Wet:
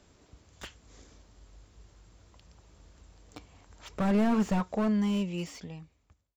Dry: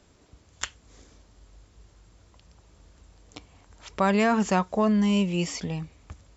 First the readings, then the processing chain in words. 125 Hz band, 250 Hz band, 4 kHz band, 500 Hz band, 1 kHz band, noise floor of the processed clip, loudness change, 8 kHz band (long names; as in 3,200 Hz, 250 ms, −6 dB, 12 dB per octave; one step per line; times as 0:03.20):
−4.5 dB, −3.5 dB, −9.0 dB, −7.0 dB, −9.0 dB, −70 dBFS, −3.5 dB, can't be measured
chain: fade-out on the ending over 2.07 s
slew-rate limiting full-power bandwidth 36 Hz
level −1.5 dB